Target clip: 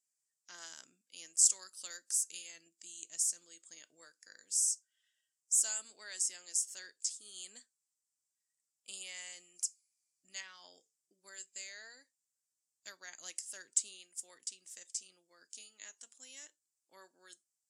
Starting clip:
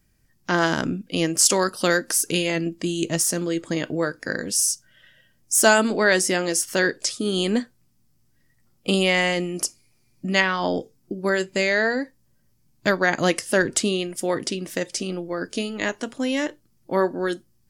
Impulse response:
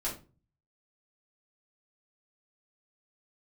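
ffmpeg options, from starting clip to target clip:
-af "bandpass=f=7600:t=q:w=3.7:csg=0,volume=0.562"

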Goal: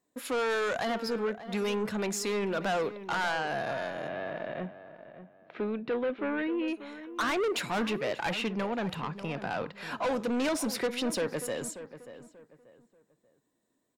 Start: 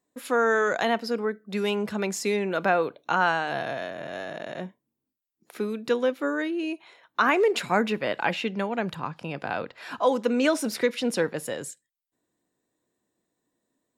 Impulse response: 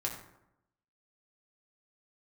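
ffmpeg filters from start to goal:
-filter_complex "[0:a]asoftclip=type=tanh:threshold=0.0501,asettb=1/sr,asplit=3[s0][s1][s2];[s0]atrim=end=4.084[s3];[s1]atrim=start=4.08:end=6.68,asetpts=PTS-STARTPTS,afade=t=in:d=0.004:c=qsin,afade=t=out:st=2.596:d=0.004:c=qsin,lowpass=f=3100:w=0.5412,lowpass=f=3100:w=1.3066[s4];[s2]atrim=start=6.676[s5];[s3][s4]acrossfade=d=0.004:c1=hsin:c2=qsin[s6];[s6][s5]acrossfade=d=0.004:c1=qsin:c2=hsin,asplit=2[s7][s8];[s8]adelay=586,lowpass=f=2100:p=1,volume=0.237,asplit=2[s9][s10];[s10]adelay=586,lowpass=f=2100:p=1,volume=0.31,asplit=2[s11][s12];[s12]adelay=586,lowpass=f=2100:p=1,volume=0.31[s13];[s7][s9][s11][s13]amix=inputs=4:normalize=0"

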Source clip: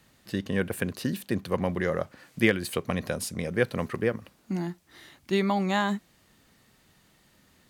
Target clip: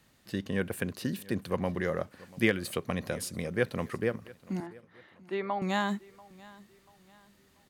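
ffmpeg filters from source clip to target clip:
-filter_complex "[0:a]asettb=1/sr,asplit=3[s0][s1][s2];[s0]atrim=end=4.604[s3];[s1]atrim=start=4.6:end=5.62,asetpts=PTS-STARTPTS,afade=t=in:d=0.004:c=qsin,afade=t=out:st=1.016:d=0.004:c=qsin,highpass=380,lowpass=2000[s4];[s2]atrim=start=5.616[s5];[s3][s4]acrossfade=d=0.004:c1=hsin:c2=qsin[s6];[s6][s5]acrossfade=d=0.004:c1=qsin:c2=hsin,aecho=1:1:688|1376|2064:0.0794|0.031|0.0121,volume=0.668"

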